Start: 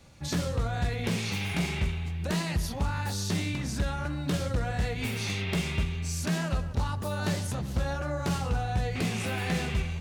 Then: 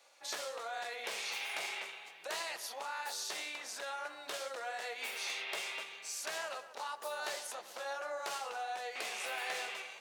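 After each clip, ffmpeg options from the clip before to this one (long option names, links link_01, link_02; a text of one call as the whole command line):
ffmpeg -i in.wav -af "highpass=frequency=540:width=0.5412,highpass=frequency=540:width=1.3066,volume=-4dB" out.wav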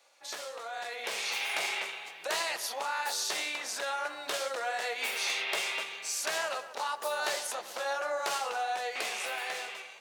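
ffmpeg -i in.wav -af "dynaudnorm=framelen=240:gausssize=9:maxgain=7.5dB" out.wav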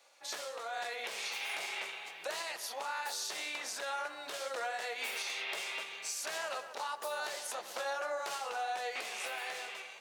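ffmpeg -i in.wav -af "alimiter=level_in=4dB:limit=-24dB:level=0:latency=1:release=476,volume=-4dB" out.wav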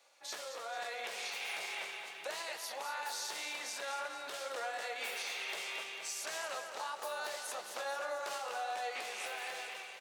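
ffmpeg -i in.wav -af "aecho=1:1:222|444|666|888|1110|1332:0.376|0.199|0.106|0.056|0.0297|0.0157,volume=-2.5dB" out.wav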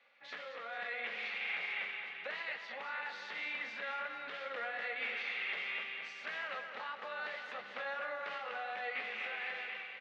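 ffmpeg -i in.wav -af "highpass=120,equalizer=frequency=130:width_type=q:width=4:gain=6,equalizer=frequency=220:width_type=q:width=4:gain=9,equalizer=frequency=360:width_type=q:width=4:gain=-10,equalizer=frequency=650:width_type=q:width=4:gain=-8,equalizer=frequency=930:width_type=q:width=4:gain=-8,equalizer=frequency=2000:width_type=q:width=4:gain=6,lowpass=frequency=3100:width=0.5412,lowpass=frequency=3100:width=1.3066,volume=1.5dB" out.wav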